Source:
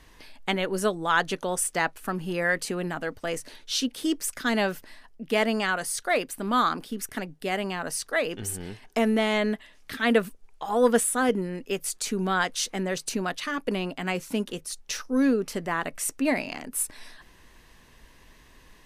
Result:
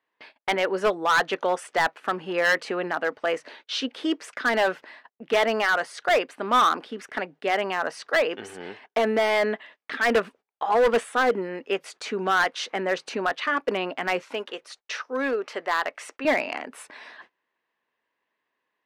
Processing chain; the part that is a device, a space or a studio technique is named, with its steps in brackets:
walkie-talkie (band-pass filter 450–2,500 Hz; hard clipping −23 dBFS, distortion −10 dB; noise gate −54 dBFS, range −27 dB)
0:14.22–0:16.25: parametric band 160 Hz −14.5 dB 1.7 octaves
level +7.5 dB

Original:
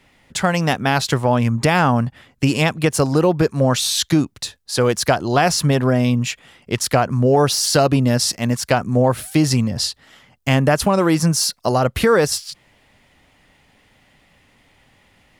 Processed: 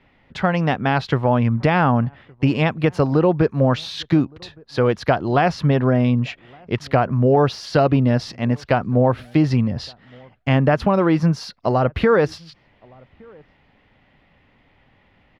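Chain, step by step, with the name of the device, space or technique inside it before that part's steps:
shout across a valley (high-frequency loss of the air 310 metres; slap from a distant wall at 200 metres, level −28 dB)

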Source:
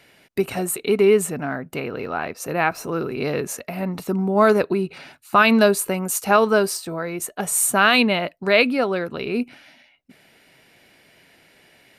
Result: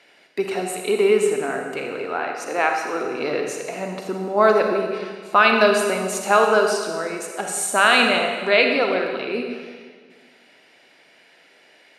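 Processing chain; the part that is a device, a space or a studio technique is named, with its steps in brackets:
0:02.24–0:03.04: high-pass filter 210 Hz 24 dB per octave
supermarket ceiling speaker (band-pass filter 330–7,000 Hz; convolution reverb RT60 1.7 s, pre-delay 37 ms, DRR 2.5 dB)

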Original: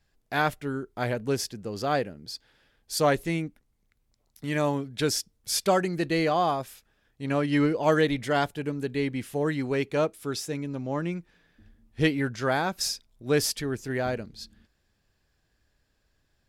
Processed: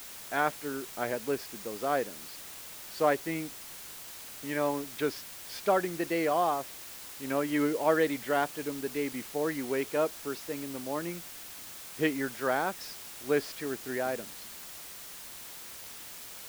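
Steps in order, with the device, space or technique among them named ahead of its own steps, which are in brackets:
wax cylinder (band-pass filter 270–2,500 Hz; tape wow and flutter; white noise bed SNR 12 dB)
level −2.5 dB

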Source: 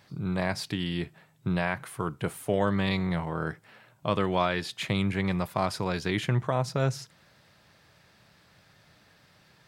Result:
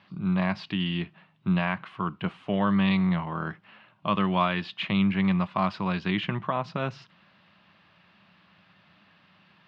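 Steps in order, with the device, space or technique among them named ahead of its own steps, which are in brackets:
guitar cabinet (loudspeaker in its box 100–3,900 Hz, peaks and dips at 130 Hz −7 dB, 190 Hz +9 dB, 460 Hz −8 dB, 1,100 Hz +7 dB, 2,800 Hz +8 dB)
level −1 dB

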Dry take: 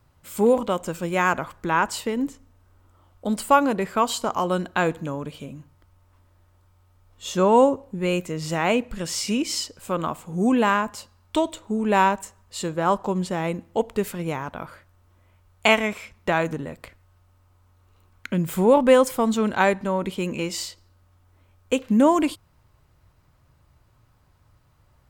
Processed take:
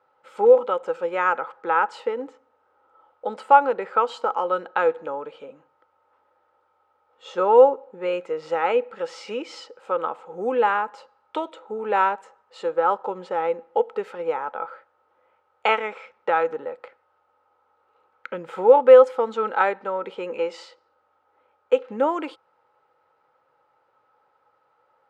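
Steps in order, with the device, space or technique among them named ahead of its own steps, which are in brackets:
dynamic equaliser 730 Hz, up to −5 dB, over −29 dBFS, Q 1
tin-can telephone (band-pass filter 460–3,000 Hz; hollow resonant body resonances 500/830/1,300 Hz, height 17 dB, ringing for 40 ms)
level −4.5 dB

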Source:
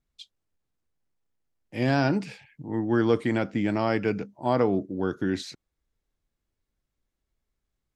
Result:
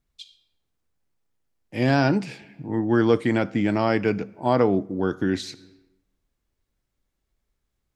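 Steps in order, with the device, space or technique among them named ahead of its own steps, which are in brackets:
compressed reverb return (on a send at −9 dB: convolution reverb RT60 0.85 s, pre-delay 39 ms + downward compressor 6 to 1, threshold −38 dBFS, peak gain reduction 18 dB)
on the sum: level +3.5 dB

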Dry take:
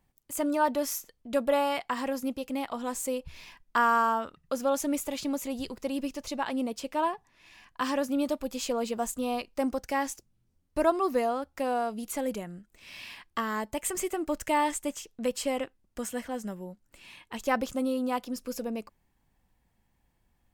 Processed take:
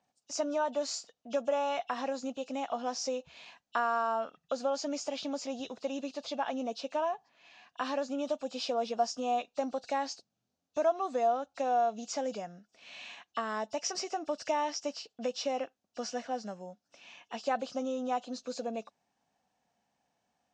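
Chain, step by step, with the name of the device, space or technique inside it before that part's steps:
hearing aid with frequency lowering (hearing-aid frequency compression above 2,600 Hz 1.5 to 1; downward compressor 2.5 to 1, threshold −29 dBFS, peak gain reduction 8 dB; loudspeaker in its box 270–6,500 Hz, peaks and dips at 350 Hz −9 dB, 710 Hz +8 dB, 1,000 Hz −4 dB, 2,000 Hz −7 dB, 6,500 Hz +3 dB)

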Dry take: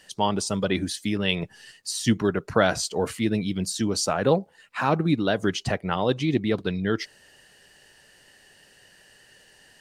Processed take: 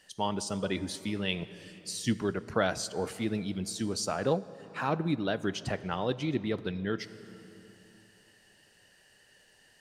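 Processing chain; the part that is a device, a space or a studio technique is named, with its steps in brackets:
compressed reverb return (on a send at −10 dB: convolution reverb RT60 2.7 s, pre-delay 18 ms + downward compressor 5 to 1, threshold −26 dBFS, peak gain reduction 9.5 dB)
on the sum: level −7.5 dB

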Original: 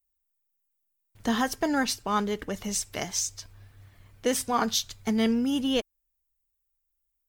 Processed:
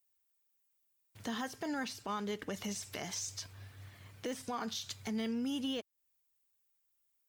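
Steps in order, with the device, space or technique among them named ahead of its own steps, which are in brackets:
broadcast voice chain (high-pass filter 81 Hz 24 dB per octave; de-essing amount 85%; downward compressor 3 to 1, threshold −38 dBFS, peak gain reduction 13 dB; parametric band 4,000 Hz +4 dB 2.9 octaves; brickwall limiter −30 dBFS, peak gain reduction 7.5 dB)
level +1 dB

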